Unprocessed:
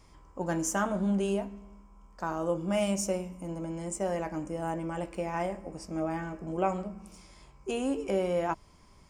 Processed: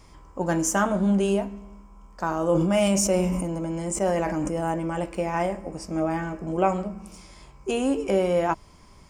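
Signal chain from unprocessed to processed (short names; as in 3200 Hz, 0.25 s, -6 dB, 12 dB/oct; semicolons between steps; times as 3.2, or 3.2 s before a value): 2.32–4.72 sustainer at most 23 dB/s; gain +6.5 dB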